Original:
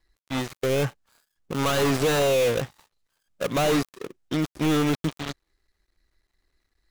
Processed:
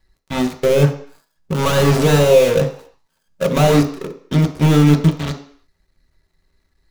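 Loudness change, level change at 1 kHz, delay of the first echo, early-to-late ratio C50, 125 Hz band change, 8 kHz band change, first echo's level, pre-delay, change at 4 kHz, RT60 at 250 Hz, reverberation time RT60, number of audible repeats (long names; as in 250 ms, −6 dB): +9.0 dB, +6.5 dB, no echo audible, 11.0 dB, +14.5 dB, +5.0 dB, no echo audible, 3 ms, +5.0 dB, 0.50 s, 0.55 s, no echo audible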